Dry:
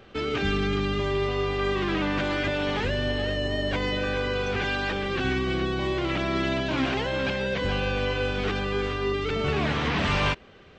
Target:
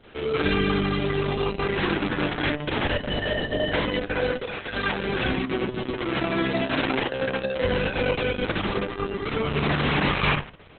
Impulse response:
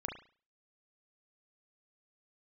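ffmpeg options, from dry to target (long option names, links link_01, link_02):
-filter_complex "[0:a]asettb=1/sr,asplit=3[link_01][link_02][link_03];[link_01]atrim=end=4.324[link_04];[link_02]atrim=start=4.32:end=4.73,asetpts=PTS-STARTPTS,afade=type=in:duration=0.004:curve=qsin,afade=type=out:start_time=0.406:duration=0.004:curve=qsin,acrossover=split=310|1400[link_05][link_06][link_07];[link_05]acompressor=threshold=-44dB:ratio=4[link_08];[link_06]acompressor=threshold=-40dB:ratio=4[link_09];[link_07]acompressor=threshold=-38dB:ratio=4[link_10];[link_08][link_09][link_10]amix=inputs=3:normalize=0[link_11];[link_03]atrim=start=4.726[link_12];[link_04][link_11]acrossfade=duration=0.004:curve1=hsin:curve2=qsin[link_13];[link_13][link_12]acrossfade=duration=0.004:curve1=qsin:curve2=hsin,asplit=2[link_14][link_15];[1:a]atrim=start_sample=2205,adelay=36[link_16];[link_15][link_16]afir=irnorm=-1:irlink=0,volume=-1.5dB[link_17];[link_14][link_17]amix=inputs=2:normalize=0" -ar 48000 -c:a libopus -b:a 6k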